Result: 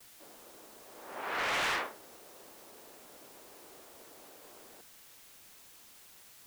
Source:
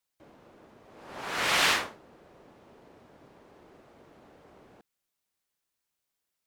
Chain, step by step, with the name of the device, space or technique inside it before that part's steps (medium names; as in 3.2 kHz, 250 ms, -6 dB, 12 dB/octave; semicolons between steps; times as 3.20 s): aircraft radio (band-pass 320–2500 Hz; hard clipper -29 dBFS, distortion -8 dB; white noise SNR 14 dB); gate with hold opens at -49 dBFS